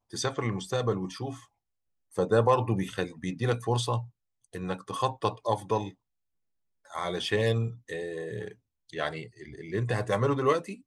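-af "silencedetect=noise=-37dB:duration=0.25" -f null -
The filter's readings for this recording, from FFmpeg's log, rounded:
silence_start: 1.36
silence_end: 2.18 | silence_duration: 0.82
silence_start: 4.04
silence_end: 4.55 | silence_duration: 0.51
silence_start: 5.89
silence_end: 6.93 | silence_duration: 1.03
silence_start: 8.52
silence_end: 8.93 | silence_duration: 0.42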